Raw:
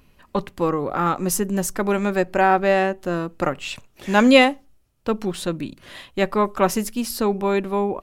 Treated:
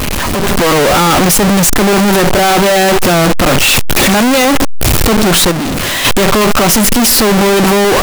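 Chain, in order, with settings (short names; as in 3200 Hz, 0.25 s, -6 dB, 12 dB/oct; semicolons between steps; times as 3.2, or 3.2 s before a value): infinite clipping; AGC gain up to 6.5 dB; 5.51–6.05 hard clip -21.5 dBFS, distortion -17 dB; gain +6.5 dB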